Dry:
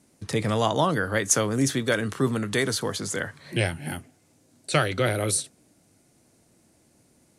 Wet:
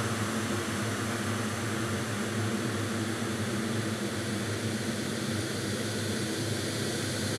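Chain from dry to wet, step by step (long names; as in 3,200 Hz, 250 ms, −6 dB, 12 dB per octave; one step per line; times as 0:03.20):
parametric band 110 Hz +6.5 dB 1.5 octaves
compressor whose output falls as the input rises −34 dBFS, ratio −1
all-pass dispersion highs, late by 93 ms, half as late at 490 Hz
on a send: echo with shifted repeats 116 ms, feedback 53%, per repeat +120 Hz, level −3.5 dB
on the sum: extreme stretch with random phases 21×, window 1.00 s, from 0:02.38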